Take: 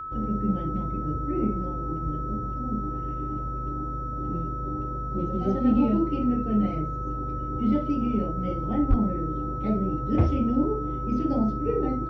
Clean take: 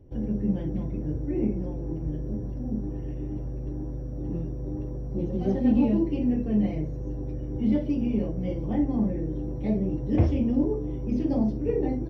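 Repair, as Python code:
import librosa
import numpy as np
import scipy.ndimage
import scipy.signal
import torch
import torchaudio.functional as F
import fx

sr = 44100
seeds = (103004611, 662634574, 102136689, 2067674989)

y = fx.fix_declip(x, sr, threshold_db=-12.0)
y = fx.notch(y, sr, hz=1300.0, q=30.0)
y = fx.highpass(y, sr, hz=140.0, slope=24, at=(8.89, 9.01), fade=0.02)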